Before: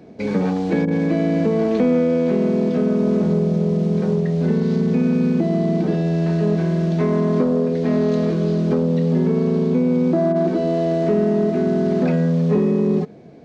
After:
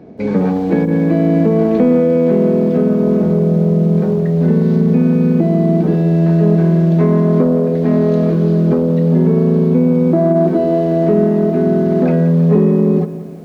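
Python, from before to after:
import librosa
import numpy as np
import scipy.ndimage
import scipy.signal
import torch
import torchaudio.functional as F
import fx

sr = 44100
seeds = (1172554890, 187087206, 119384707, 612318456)

y = fx.high_shelf(x, sr, hz=2300.0, db=-12.0)
y = fx.echo_crushed(y, sr, ms=175, feedback_pct=55, bits=8, wet_db=-14.0)
y = y * librosa.db_to_amplitude(5.5)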